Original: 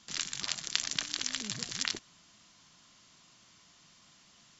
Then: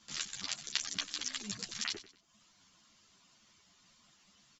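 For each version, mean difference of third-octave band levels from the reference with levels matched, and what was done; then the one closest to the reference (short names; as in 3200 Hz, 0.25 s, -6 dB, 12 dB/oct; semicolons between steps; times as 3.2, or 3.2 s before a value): 2.5 dB: reverb removal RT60 0.77 s; on a send: feedback echo 94 ms, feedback 36%, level -15.5 dB; on the sum: ensemble effect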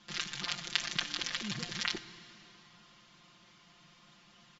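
4.5 dB: LPF 3700 Hz 12 dB/oct; comb 5.7 ms, depth 92%; plate-style reverb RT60 3.3 s, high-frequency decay 0.85×, DRR 13 dB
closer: first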